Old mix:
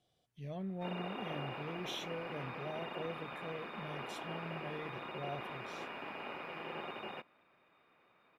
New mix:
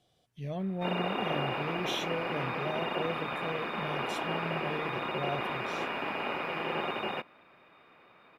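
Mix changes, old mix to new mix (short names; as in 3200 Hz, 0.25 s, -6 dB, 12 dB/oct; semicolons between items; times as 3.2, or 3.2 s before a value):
speech +7.0 dB; background +10.5 dB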